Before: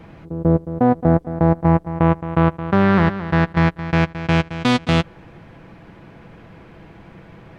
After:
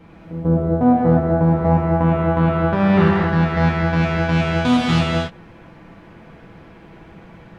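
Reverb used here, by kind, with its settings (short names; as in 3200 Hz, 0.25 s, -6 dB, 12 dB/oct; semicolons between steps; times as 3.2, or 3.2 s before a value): non-linear reverb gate 0.3 s flat, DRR -5.5 dB; gain -6 dB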